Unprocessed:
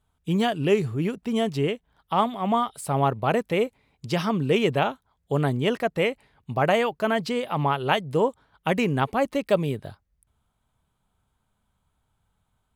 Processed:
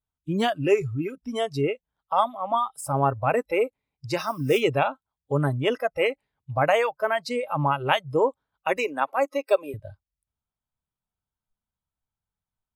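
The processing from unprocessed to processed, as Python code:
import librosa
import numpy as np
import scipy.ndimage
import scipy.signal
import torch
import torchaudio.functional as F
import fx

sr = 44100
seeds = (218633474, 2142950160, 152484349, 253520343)

y = fx.block_float(x, sr, bits=5, at=(4.19, 4.59), fade=0.02)
y = fx.noise_reduce_blind(y, sr, reduce_db=20)
y = fx.highpass(y, sr, hz=330.0, slope=24, at=(8.77, 9.74))
y = y * librosa.db_to_amplitude(1.0)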